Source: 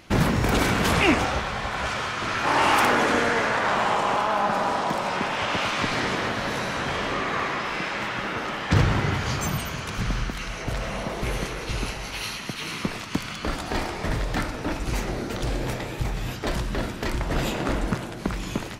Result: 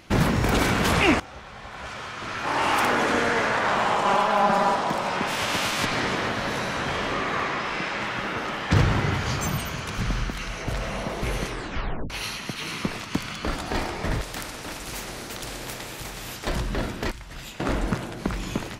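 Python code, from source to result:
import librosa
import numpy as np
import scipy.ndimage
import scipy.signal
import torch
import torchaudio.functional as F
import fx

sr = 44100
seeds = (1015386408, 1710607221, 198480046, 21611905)

y = fx.comb(x, sr, ms=5.1, depth=0.78, at=(4.05, 4.75))
y = fx.envelope_flatten(y, sr, power=0.6, at=(5.27, 5.84), fade=0.02)
y = fx.lowpass(y, sr, hz=10000.0, slope=12, at=(7.43, 8.07))
y = fx.spectral_comp(y, sr, ratio=2.0, at=(14.21, 16.47))
y = fx.tone_stack(y, sr, knobs='5-5-5', at=(17.11, 17.6))
y = fx.edit(y, sr, fx.fade_in_from(start_s=1.2, length_s=2.22, floor_db=-19.5),
    fx.tape_stop(start_s=11.47, length_s=0.63), tone=tone)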